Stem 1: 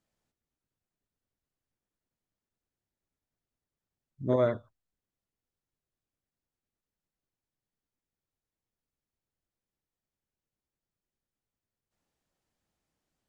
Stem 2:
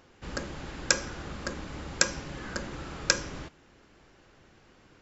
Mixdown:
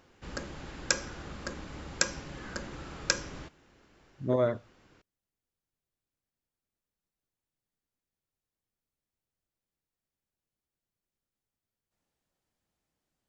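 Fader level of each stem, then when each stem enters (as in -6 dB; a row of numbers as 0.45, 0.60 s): -1.0, -3.5 dB; 0.00, 0.00 s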